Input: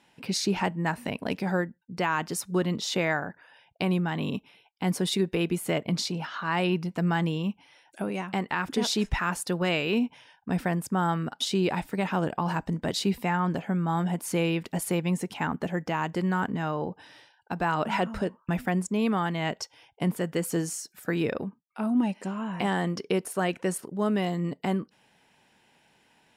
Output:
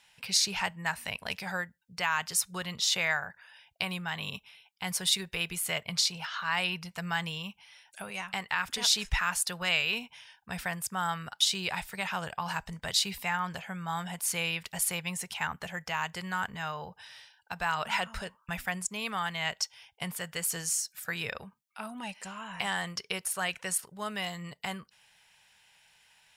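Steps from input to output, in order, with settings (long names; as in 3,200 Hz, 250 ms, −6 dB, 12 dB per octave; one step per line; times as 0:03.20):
guitar amp tone stack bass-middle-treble 10-0-10
level +6 dB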